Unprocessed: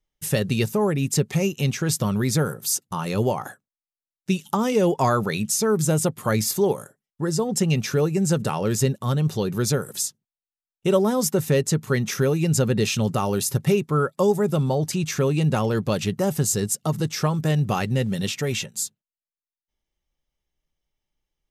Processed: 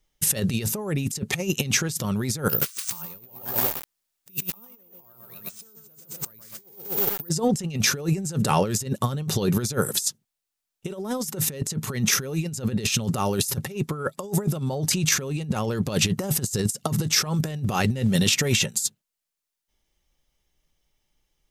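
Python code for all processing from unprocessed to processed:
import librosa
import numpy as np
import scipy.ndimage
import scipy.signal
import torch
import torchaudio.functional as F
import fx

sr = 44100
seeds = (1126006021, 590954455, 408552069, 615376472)

y = fx.chain(x, sr, fx.resample_bad(factor=3, down='none', up='zero_stuff'),
    fx.echo_crushed(ms=124, feedback_pct=55, bits=5, wet_db=-4), at=(2.49, 7.29))
y = fx.high_shelf(y, sr, hz=3800.0, db=5.5)
y = fx.over_compress(y, sr, threshold_db=-26.0, ratio=-0.5)
y = fx.high_shelf(y, sr, hz=12000.0, db=-3.0)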